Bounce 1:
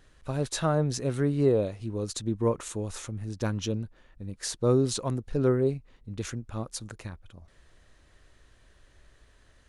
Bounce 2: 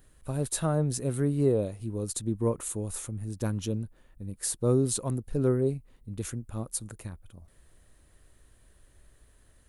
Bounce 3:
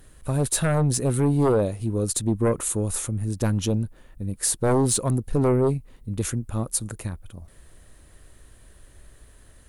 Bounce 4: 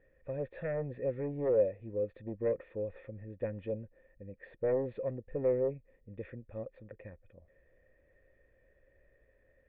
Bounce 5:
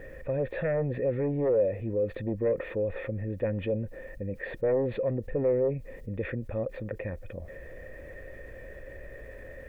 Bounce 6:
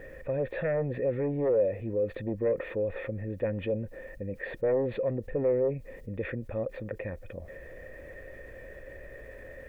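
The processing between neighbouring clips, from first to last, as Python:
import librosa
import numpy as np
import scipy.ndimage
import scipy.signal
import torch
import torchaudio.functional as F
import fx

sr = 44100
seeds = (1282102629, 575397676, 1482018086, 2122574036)

y1 = fx.curve_eq(x, sr, hz=(200.0, 1800.0, 5900.0, 10000.0), db=(0, -6, -5, 11))
y2 = fx.fold_sine(y1, sr, drive_db=8, ceiling_db=-12.5)
y2 = y2 * librosa.db_to_amplitude(-3.0)
y3 = fx.formant_cascade(y2, sr, vowel='e')
y4 = fx.env_flatten(y3, sr, amount_pct=50)
y4 = y4 * librosa.db_to_amplitude(1.5)
y5 = fx.low_shelf(y4, sr, hz=200.0, db=-3.5)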